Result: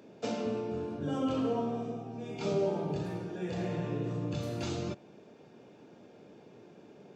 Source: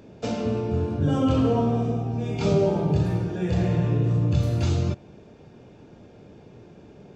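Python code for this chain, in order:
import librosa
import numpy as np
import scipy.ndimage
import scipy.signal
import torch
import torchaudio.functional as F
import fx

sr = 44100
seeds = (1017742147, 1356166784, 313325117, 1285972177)

y = scipy.signal.sosfilt(scipy.signal.butter(2, 210.0, 'highpass', fs=sr, output='sos'), x)
y = fx.rider(y, sr, range_db=10, speed_s=2.0)
y = F.gain(torch.from_numpy(y), -8.0).numpy()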